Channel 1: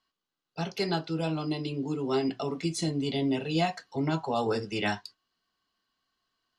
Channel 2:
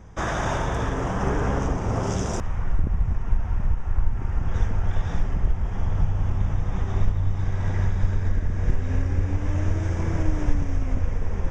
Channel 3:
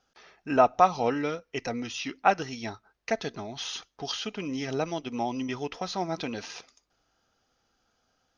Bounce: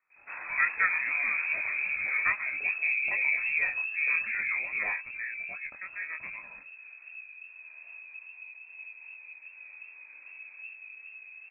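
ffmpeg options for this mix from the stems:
-filter_complex "[0:a]lowshelf=f=330:g=10.5,volume=-4.5dB[a];[1:a]adelay=100,volume=-11.5dB,afade=t=out:st=4.01:d=0.55:silence=0.251189[b];[2:a]volume=-4.5dB[c];[a][b][c]amix=inputs=3:normalize=0,lowpass=f=2.2k:t=q:w=0.5098,lowpass=f=2.2k:t=q:w=0.6013,lowpass=f=2.2k:t=q:w=0.9,lowpass=f=2.2k:t=q:w=2.563,afreqshift=-2600,flanger=delay=19.5:depth=5.4:speed=2.5"

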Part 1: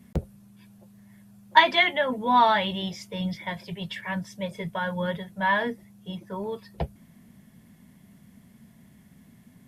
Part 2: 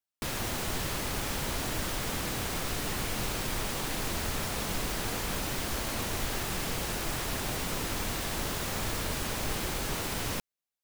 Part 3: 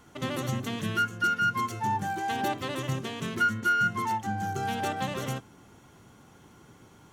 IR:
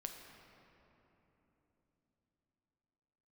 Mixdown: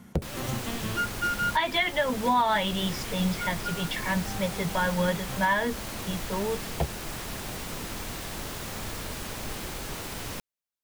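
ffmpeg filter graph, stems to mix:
-filter_complex "[0:a]volume=2.5dB,asplit=2[a][b];[1:a]volume=-3dB[c];[2:a]volume=-1.5dB[d];[b]apad=whole_len=314245[e];[d][e]sidechaincompress=threshold=-47dB:ratio=8:attack=16:release=107[f];[a][c][f]amix=inputs=3:normalize=0,alimiter=limit=-15dB:level=0:latency=1:release=290"

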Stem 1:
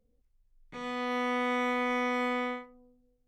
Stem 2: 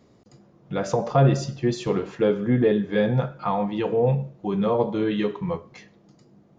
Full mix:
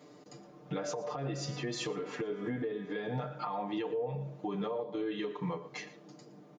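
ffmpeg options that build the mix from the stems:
-filter_complex "[0:a]adelay=300,volume=-18.5dB[a];[1:a]highpass=240,aecho=1:1:6.7:0.97,acompressor=threshold=-29dB:ratio=6,volume=1.5dB,asplit=3[b][c][d];[c]volume=-17dB[e];[d]apad=whole_len=157712[f];[a][f]sidechaincompress=threshold=-36dB:ratio=8:attack=16:release=144[g];[e]aecho=0:1:116:1[h];[g][b][h]amix=inputs=3:normalize=0,alimiter=level_in=3dB:limit=-24dB:level=0:latency=1:release=287,volume=-3dB"

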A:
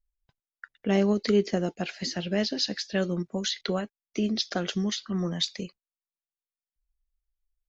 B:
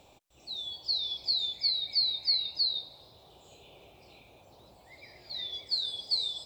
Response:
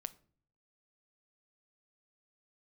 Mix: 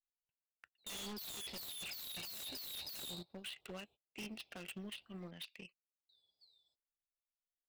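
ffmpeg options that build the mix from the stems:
-filter_complex "[0:a]agate=range=-7dB:threshold=-46dB:ratio=16:detection=peak,lowpass=f=2.7k:t=q:w=13,volume=-17.5dB,asplit=2[a][b];[1:a]agate=range=-17dB:threshold=-46dB:ratio=16:detection=peak,bandreject=f=6.7k:w=5.2,adelay=300,volume=1.5dB,asplit=3[c][d][e];[c]atrim=end=5.31,asetpts=PTS-STARTPTS,afade=t=out:st=5.306:d=0.004:c=hsin[f];[d]atrim=start=5.31:end=6.09,asetpts=PTS-STARTPTS,volume=0[g];[e]atrim=start=6.09,asetpts=PTS-STARTPTS,afade=t=in:d=0.004:c=hsin[h];[f][g][h]concat=n=3:v=0:a=1[i];[b]apad=whole_len=298097[j];[i][j]sidechaingate=range=-33dB:threshold=-59dB:ratio=16:detection=peak[k];[a][k]amix=inputs=2:normalize=0,asoftclip=type=tanh:threshold=-32dB,aeval=exprs='0.0251*(cos(1*acos(clip(val(0)/0.0251,-1,1)))-cos(1*PI/2))+0.00224*(cos(7*acos(clip(val(0)/0.0251,-1,1)))-cos(7*PI/2))':c=same,aeval=exprs='0.0112*(abs(mod(val(0)/0.0112+3,4)-2)-1)':c=same"

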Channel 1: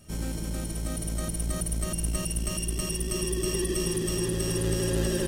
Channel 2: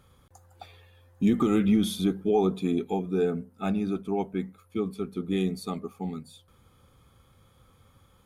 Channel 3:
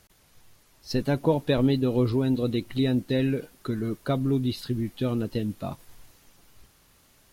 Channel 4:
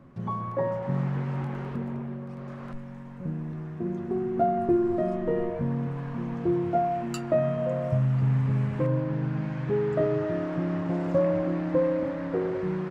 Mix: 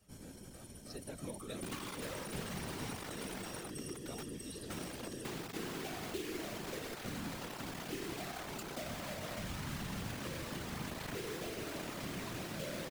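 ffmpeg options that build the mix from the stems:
-filter_complex "[0:a]volume=-10.5dB[a];[1:a]volume=-12.5dB[b];[2:a]volume=-11.5dB[c];[3:a]acrossover=split=420[d][e];[e]acompressor=threshold=-36dB:ratio=6[f];[d][f]amix=inputs=2:normalize=0,acrusher=bits=4:mix=0:aa=0.000001,adelay=1450,volume=0dB[g];[a][b][c][g]amix=inputs=4:normalize=0,acrossover=split=150|1800[h][i][j];[h]acompressor=threshold=-52dB:ratio=4[k];[i]acompressor=threshold=-37dB:ratio=4[l];[j]acompressor=threshold=-38dB:ratio=4[m];[k][l][m]amix=inputs=3:normalize=0,afftfilt=real='hypot(re,im)*cos(2*PI*random(0))':imag='hypot(re,im)*sin(2*PI*random(1))':win_size=512:overlap=0.75"

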